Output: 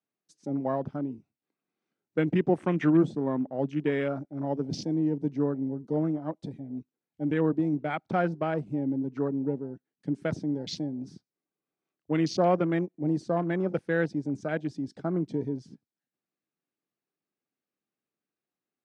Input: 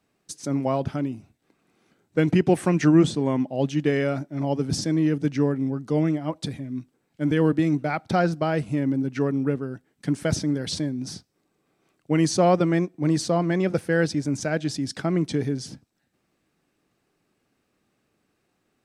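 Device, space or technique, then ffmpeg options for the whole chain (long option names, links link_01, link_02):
over-cleaned archive recording: -af "highpass=150,lowpass=7200,afwtdn=0.02,volume=-4.5dB"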